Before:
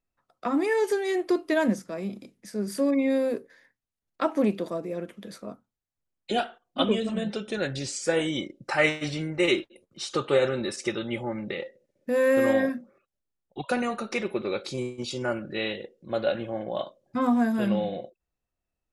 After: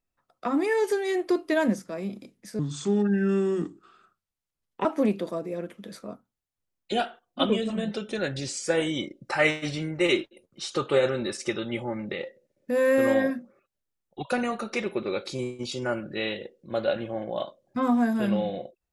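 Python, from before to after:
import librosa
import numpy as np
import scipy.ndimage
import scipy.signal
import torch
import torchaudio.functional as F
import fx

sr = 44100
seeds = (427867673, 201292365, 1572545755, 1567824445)

y = fx.edit(x, sr, fx.speed_span(start_s=2.59, length_s=1.65, speed=0.73), tone=tone)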